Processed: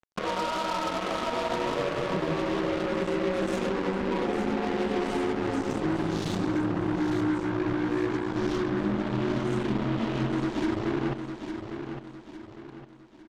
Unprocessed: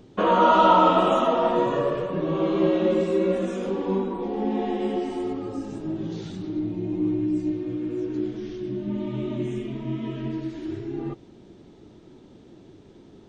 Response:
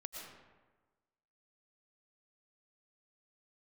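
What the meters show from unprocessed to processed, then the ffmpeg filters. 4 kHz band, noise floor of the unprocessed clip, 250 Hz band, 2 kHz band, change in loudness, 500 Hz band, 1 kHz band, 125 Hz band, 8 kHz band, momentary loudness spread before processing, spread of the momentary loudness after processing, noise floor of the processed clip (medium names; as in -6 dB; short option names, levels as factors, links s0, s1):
0.0 dB, -50 dBFS, -2.0 dB, +3.0 dB, -4.5 dB, -5.0 dB, -8.5 dB, 0.0 dB, no reading, 14 LU, 9 LU, -48 dBFS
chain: -filter_complex "[0:a]acompressor=threshold=0.0447:ratio=6,alimiter=level_in=1.78:limit=0.0631:level=0:latency=1:release=237,volume=0.562,acrusher=bits=5:mix=0:aa=0.5,asplit=2[s0][s1];[s1]aecho=0:1:856|1712|2568|3424|4280:0.398|0.159|0.0637|0.0255|0.0102[s2];[s0][s2]amix=inputs=2:normalize=0,volume=2.37"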